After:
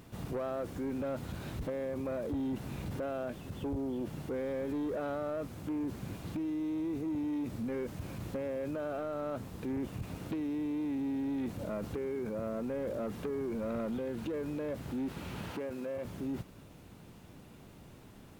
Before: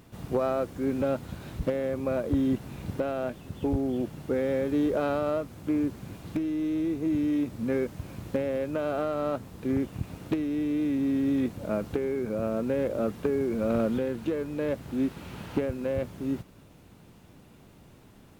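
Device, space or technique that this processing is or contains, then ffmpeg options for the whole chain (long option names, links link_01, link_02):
soft clipper into limiter: -filter_complex "[0:a]asoftclip=type=tanh:threshold=-22.5dB,alimiter=level_in=6.5dB:limit=-24dB:level=0:latency=1:release=22,volume=-6.5dB,asettb=1/sr,asplit=3[link_01][link_02][link_03];[link_01]atrim=end=15.514[link_04];[link_02]atrim=start=15.51:end=16.05,asetpts=PTS-STARTPTS,afade=type=in:duration=0.004:curve=qsin,afade=type=out:start_time=0.536:duration=0.004:curve=qsin,highpass=frequency=270:poles=1[link_05];[link_03]atrim=start=16.046[link_06];[link_04][link_05]acrossfade=duration=0.004:curve1=hsin:curve2=qsin[link_07];[link_07][link_06]acrossfade=duration=0.004:curve1=qsin:curve2=hsin"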